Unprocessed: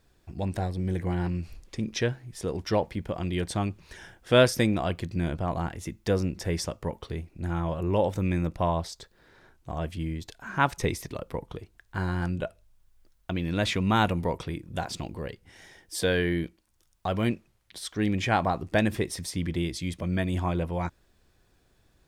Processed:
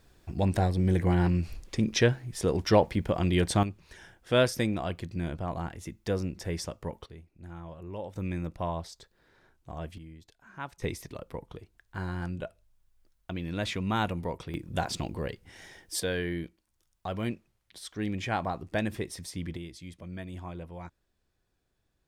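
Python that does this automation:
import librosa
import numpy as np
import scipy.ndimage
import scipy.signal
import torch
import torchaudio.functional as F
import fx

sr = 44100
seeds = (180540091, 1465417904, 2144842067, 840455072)

y = fx.gain(x, sr, db=fx.steps((0.0, 4.0), (3.63, -4.5), (7.06, -14.0), (8.16, -6.5), (9.98, -15.5), (10.82, -5.5), (14.54, 1.5), (16.0, -6.0), (19.57, -12.5)))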